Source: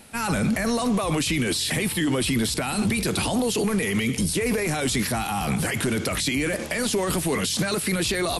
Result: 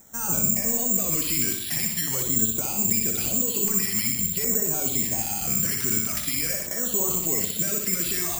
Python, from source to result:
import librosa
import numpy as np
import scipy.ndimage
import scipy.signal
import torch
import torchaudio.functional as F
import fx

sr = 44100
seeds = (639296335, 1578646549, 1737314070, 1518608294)

y = fx.echo_feedback(x, sr, ms=62, feedback_pct=53, wet_db=-5.0)
y = fx.filter_lfo_notch(y, sr, shape='saw_down', hz=0.45, low_hz=280.0, high_hz=2800.0, q=1.4)
y = (np.kron(scipy.signal.resample_poly(y, 1, 6), np.eye(6)[0]) * 6)[:len(y)]
y = y * librosa.db_to_amplitude(-8.5)